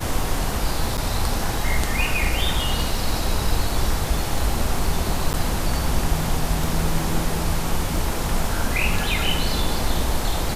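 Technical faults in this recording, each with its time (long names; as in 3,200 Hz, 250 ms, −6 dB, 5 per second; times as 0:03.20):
surface crackle 18 per second −28 dBFS
0:00.97–0:00.98: drop-out 8.6 ms
0:05.33–0:05.34: drop-out 9.4 ms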